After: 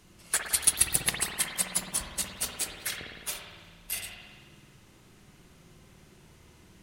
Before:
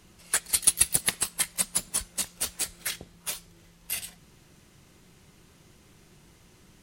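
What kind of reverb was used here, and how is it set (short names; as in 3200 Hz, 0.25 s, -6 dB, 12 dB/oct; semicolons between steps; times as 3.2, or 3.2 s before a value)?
spring tank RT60 1.6 s, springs 54 ms, chirp 45 ms, DRR 0.5 dB; gain -2 dB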